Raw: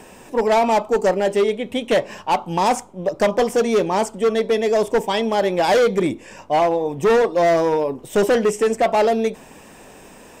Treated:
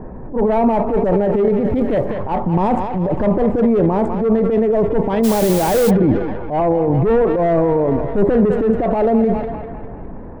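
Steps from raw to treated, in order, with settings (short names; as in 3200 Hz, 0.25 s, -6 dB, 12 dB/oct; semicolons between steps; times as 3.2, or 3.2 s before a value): Wiener smoothing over 15 samples; bell 6100 Hz -14 dB 1.4 oct; thinning echo 0.2 s, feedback 65%, high-pass 470 Hz, level -13 dB; compressor, threshold -21 dBFS, peak gain reduction 7.5 dB; low-pass opened by the level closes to 1700 Hz, open at -21.5 dBFS; transient shaper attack -9 dB, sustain +7 dB; RIAA curve playback; 1.58–2.13 crackle 58/s -> 150/s -48 dBFS; 5.23–5.89 added noise white -33 dBFS; gain +5.5 dB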